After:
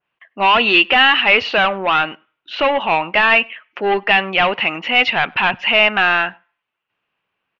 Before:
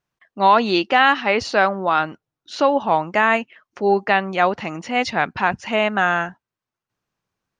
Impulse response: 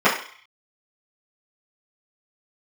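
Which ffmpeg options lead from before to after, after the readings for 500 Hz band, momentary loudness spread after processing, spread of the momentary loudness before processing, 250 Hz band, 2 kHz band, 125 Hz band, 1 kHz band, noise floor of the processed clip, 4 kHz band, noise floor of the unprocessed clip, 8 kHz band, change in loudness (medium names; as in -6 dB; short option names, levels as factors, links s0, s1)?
+0.5 dB, 9 LU, 8 LU, -2.0 dB, +7.0 dB, -2.0 dB, +1.0 dB, -78 dBFS, +11.0 dB, under -85 dBFS, no reading, +4.5 dB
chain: -filter_complex "[0:a]asplit=2[s0][s1];[s1]highpass=f=720:p=1,volume=7.94,asoftclip=type=tanh:threshold=0.668[s2];[s0][s2]amix=inputs=2:normalize=0,lowpass=f=1400:p=1,volume=0.501,lowpass=f=2800:t=q:w=4.4,asplit=2[s3][s4];[s4]adelay=99.13,volume=0.0355,highshelf=f=4000:g=-2.23[s5];[s3][s5]amix=inputs=2:normalize=0,asplit=2[s6][s7];[1:a]atrim=start_sample=2205[s8];[s7][s8]afir=irnorm=-1:irlink=0,volume=0.00631[s9];[s6][s9]amix=inputs=2:normalize=0,adynamicequalizer=threshold=0.0562:dfrequency=2000:dqfactor=0.7:tfrequency=2000:tqfactor=0.7:attack=5:release=100:ratio=0.375:range=3:mode=boostabove:tftype=highshelf,volume=0.631"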